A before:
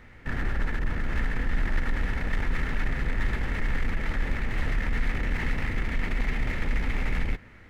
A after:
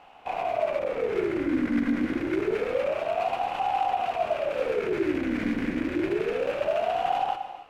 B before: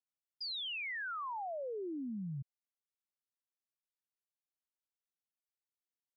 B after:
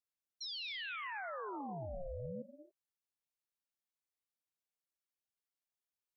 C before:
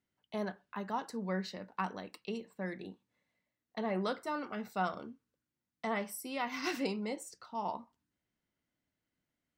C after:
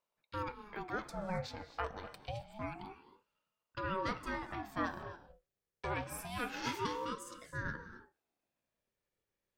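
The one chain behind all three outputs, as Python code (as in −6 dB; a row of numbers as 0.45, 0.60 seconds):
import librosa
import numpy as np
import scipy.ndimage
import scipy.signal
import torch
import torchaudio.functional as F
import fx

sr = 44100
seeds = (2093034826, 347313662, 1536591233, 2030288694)

y = fx.rev_gated(x, sr, seeds[0], gate_ms=300, shape='rising', drr_db=11.0)
y = fx.ring_lfo(y, sr, carrier_hz=520.0, swing_pct=50, hz=0.27)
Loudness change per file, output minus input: +3.5, −3.0, −2.5 LU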